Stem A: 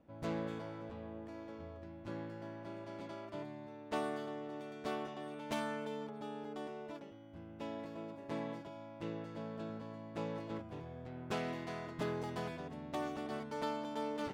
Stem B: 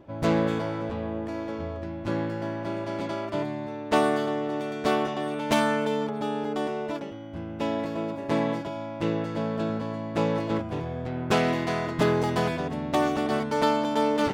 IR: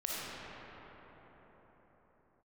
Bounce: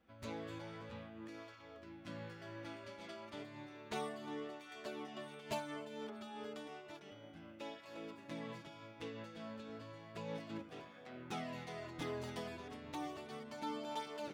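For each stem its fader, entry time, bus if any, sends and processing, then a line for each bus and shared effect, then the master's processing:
-0.5 dB, 0.00 s, send -17 dB, drifting ripple filter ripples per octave 1.4, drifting -3 Hz, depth 10 dB; cancelling through-zero flanger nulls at 0.32 Hz, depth 7.1 ms
-7.0 dB, 0.00 s, no send, elliptic high-pass 1.2 kHz; compression, threshold -43 dBFS, peak gain reduction 16 dB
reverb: on, pre-delay 15 ms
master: random flutter of the level, depth 60%

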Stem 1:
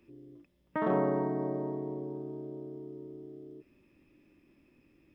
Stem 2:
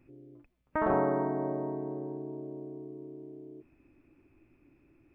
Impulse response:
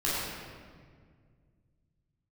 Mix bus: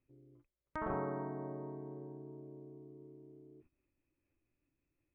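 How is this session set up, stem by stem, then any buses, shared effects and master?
-16.0 dB, 0.00 s, no send, Chebyshev band-pass 470–2300 Hz, order 2; random flutter of the level
-2.5 dB, 0.00 s, no send, low-pass 1.4 kHz 6 dB/octave; gate -55 dBFS, range -14 dB; peaking EQ 440 Hz -9.5 dB 2.6 oct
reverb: none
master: none

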